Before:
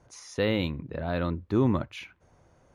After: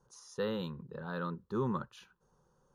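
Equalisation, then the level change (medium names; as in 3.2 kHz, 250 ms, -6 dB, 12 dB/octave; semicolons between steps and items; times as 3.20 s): dynamic bell 1.6 kHz, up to +7 dB, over -47 dBFS, Q 1.1; static phaser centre 440 Hz, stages 8; -6.5 dB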